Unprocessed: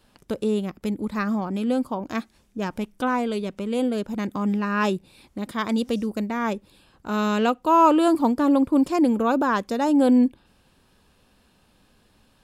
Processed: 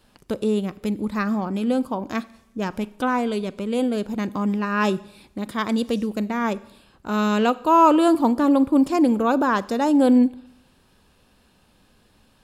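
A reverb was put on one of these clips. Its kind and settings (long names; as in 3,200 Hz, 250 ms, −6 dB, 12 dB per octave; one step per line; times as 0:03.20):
four-comb reverb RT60 0.79 s, combs from 30 ms, DRR 18.5 dB
level +1.5 dB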